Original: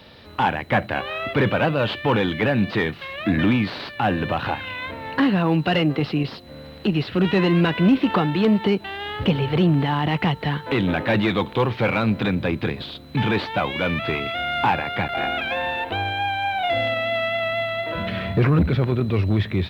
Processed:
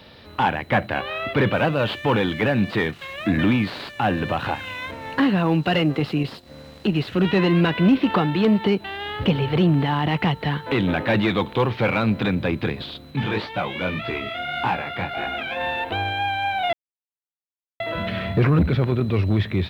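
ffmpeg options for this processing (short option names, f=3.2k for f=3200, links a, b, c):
-filter_complex "[0:a]asettb=1/sr,asplit=3[a][b][c];[a]atrim=end=1.534[d];[b]atrim=start=1.53:end=7.25,asetpts=PTS-STARTPTS,afade=t=in:d=0.004:c=qsin,afade=t=out:st=5.716:d=0.004:c=qsin,aeval=exprs='sgn(val(0))*max(abs(val(0))-0.00376,0)':c=same[e];[c]atrim=start=7.246[f];[d][e]acrossfade=d=0.004:c1=hsin:c2=qsin[g];[g][f]acrossfade=d=0.004:c1=qsin:c2=hsin,asplit=3[h][i][j];[h]afade=t=out:st=13.1:d=0.02[k];[i]flanger=delay=16:depth=6.3:speed=1.7,afade=t=in:st=13.1:d=0.02,afade=t=out:st=15.59:d=0.02[l];[j]afade=t=in:st=15.59:d=0.02[m];[k][l][m]amix=inputs=3:normalize=0,asplit=3[n][o][p];[n]atrim=end=16.73,asetpts=PTS-STARTPTS,afade=t=out:st=16.726:d=0.004:c=hsin[q];[o]atrim=start=16.73:end=17.8,asetpts=PTS-STARTPTS,volume=0[r];[p]atrim=start=17.8,asetpts=PTS-STARTPTS,afade=t=in:d=0.004:c=hsin[s];[q][r][s]concat=n=3:v=0:a=1"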